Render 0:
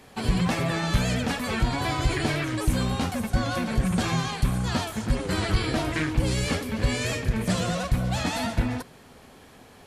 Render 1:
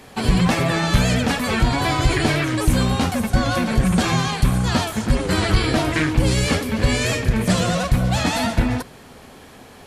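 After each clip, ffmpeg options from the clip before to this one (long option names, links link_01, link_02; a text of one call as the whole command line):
ffmpeg -i in.wav -af "bandreject=frequency=54.05:width_type=h:width=4,bandreject=frequency=108.1:width_type=h:width=4,bandreject=frequency=162.15:width_type=h:width=4,volume=7dB" out.wav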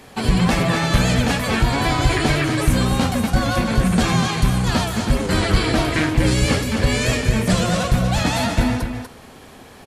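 ffmpeg -i in.wav -af "aecho=1:1:243:0.447" out.wav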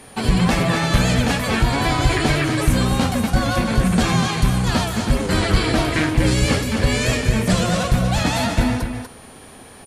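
ffmpeg -i in.wav -af "aeval=exprs='val(0)+0.00447*sin(2*PI*9500*n/s)':channel_layout=same" out.wav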